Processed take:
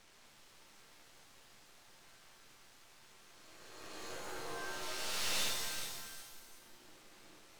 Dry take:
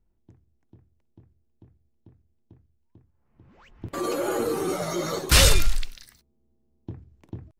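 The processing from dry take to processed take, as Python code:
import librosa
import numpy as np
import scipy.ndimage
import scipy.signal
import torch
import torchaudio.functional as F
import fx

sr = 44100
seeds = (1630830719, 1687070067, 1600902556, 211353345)

y = fx.spec_swells(x, sr, rise_s=1.9)
y = scipy.signal.sosfilt(scipy.signal.butter(2, 710.0, 'highpass', fs=sr, output='sos'), y)
y = fx.peak_eq(y, sr, hz=1100.0, db=-10.0, octaves=2.8)
y = fx.resonator_bank(y, sr, root=44, chord='minor', decay_s=0.25)
y = fx.quant_dither(y, sr, seeds[0], bits=10, dither='triangular')
y = fx.tube_stage(y, sr, drive_db=33.0, bias=0.55)
y = fx.air_absorb(y, sr, metres=89.0)
y = np.maximum(y, 0.0)
y = y + 10.0 ** (-11.0 / 20.0) * np.pad(y, (int(383 * sr / 1000.0), 0))[:len(y)]
y = fx.rev_shimmer(y, sr, seeds[1], rt60_s=1.3, semitones=7, shimmer_db=-2, drr_db=5.0)
y = y * 10.0 ** (9.0 / 20.0)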